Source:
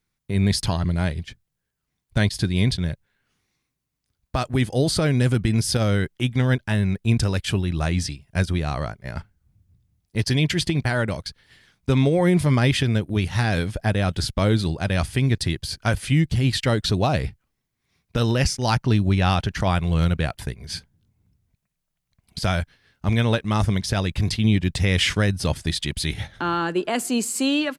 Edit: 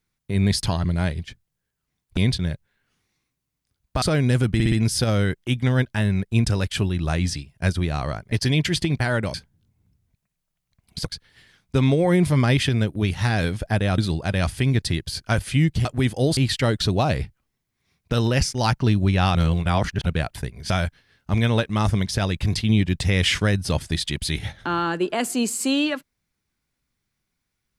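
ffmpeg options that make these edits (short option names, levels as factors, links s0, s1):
-filter_complex "[0:a]asplit=15[s0][s1][s2][s3][s4][s5][s6][s7][s8][s9][s10][s11][s12][s13][s14];[s0]atrim=end=2.172[s15];[s1]atrim=start=2.558:end=4.412[s16];[s2]atrim=start=4.928:end=5.512[s17];[s3]atrim=start=5.448:end=5.512[s18];[s4]atrim=start=5.448:end=5.512[s19];[s5]atrim=start=5.448:end=9.052[s20];[s6]atrim=start=10.168:end=11.192[s21];[s7]atrim=start=20.738:end=22.452[s22];[s8]atrim=start=11.188:end=14.122[s23];[s9]atrim=start=14.538:end=16.412[s24];[s10]atrim=start=4.408:end=4.932[s25];[s11]atrim=start=16.408:end=19.392[s26];[s12]atrim=start=19.388:end=20.102,asetpts=PTS-STARTPTS,areverse[s27];[s13]atrim=start=20.098:end=20.742[s28];[s14]atrim=start=22.448[s29];[s15][s16]acrossfade=d=0.004:c1=hsin:c2=hsin[s30];[s30][s17]acrossfade=d=0.004:c1=hsin:c2=hsin[s31];[s31][s18]acrossfade=d=0.004:c1=hsin:c2=hsin[s32];[s32][s19]acrossfade=d=0.004:c1=hsin:c2=hsin[s33];[s33][s20]acrossfade=d=0.004:c1=hsin:c2=hsin[s34];[s34][s21]acrossfade=d=0.004:c1=hsin:c2=hsin[s35];[s35][s22]acrossfade=d=0.004:c1=hsin:c2=hsin[s36];[s36][s23]acrossfade=d=0.004:c1=hsin:c2=hsin[s37];[s37][s24]acrossfade=d=0.004:c1=hsin:c2=hsin[s38];[s38][s25]acrossfade=d=0.004:c1=hsin:c2=hsin[s39];[s39][s26]acrossfade=d=0.004:c1=hsin:c2=hsin[s40];[s40][s27]acrossfade=d=0.004:c1=hsin:c2=hsin[s41];[s41][s28]acrossfade=d=0.004:c1=hsin:c2=hsin[s42];[s42][s29]acrossfade=d=0.004:c1=hsin:c2=hsin"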